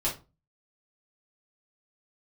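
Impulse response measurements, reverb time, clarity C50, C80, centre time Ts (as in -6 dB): 0.30 s, 9.5 dB, 18.0 dB, 22 ms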